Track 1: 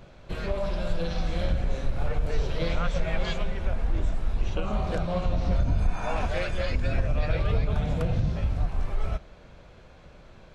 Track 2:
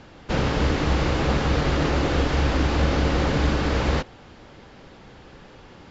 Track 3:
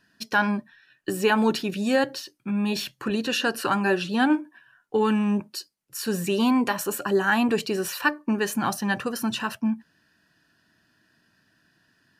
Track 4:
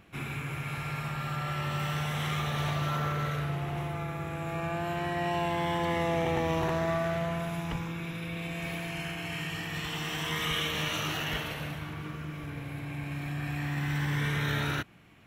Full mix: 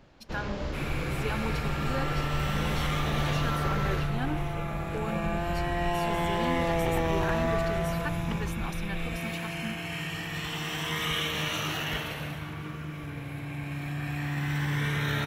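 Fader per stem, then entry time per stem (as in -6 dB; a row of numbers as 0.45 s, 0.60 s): -10.5 dB, -14.0 dB, -14.0 dB, +1.0 dB; 0.00 s, 0.00 s, 0.00 s, 0.60 s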